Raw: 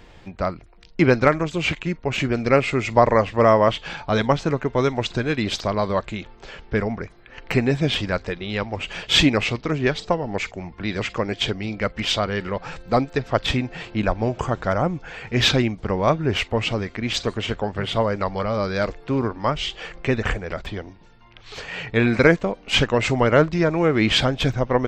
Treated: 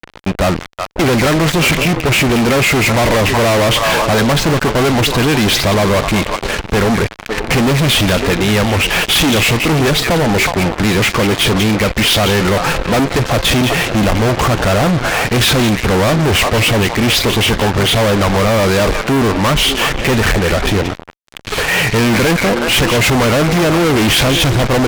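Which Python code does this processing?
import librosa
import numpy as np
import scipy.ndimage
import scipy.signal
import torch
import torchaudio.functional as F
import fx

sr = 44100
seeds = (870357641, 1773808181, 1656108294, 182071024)

y = fx.echo_stepped(x, sr, ms=184, hz=2500.0, octaves=-1.4, feedback_pct=70, wet_db=-11.5)
y = fx.env_lowpass(y, sr, base_hz=2600.0, full_db=-15.0)
y = fx.fuzz(y, sr, gain_db=40.0, gate_db=-40.0)
y = F.gain(torch.from_numpy(y), 2.5).numpy()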